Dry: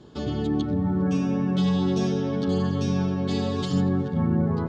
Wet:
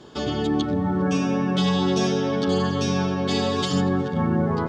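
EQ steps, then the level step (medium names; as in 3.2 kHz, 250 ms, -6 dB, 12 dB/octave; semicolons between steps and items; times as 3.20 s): bass shelf 350 Hz -11.5 dB; band-stop 4.1 kHz, Q 19; +9.0 dB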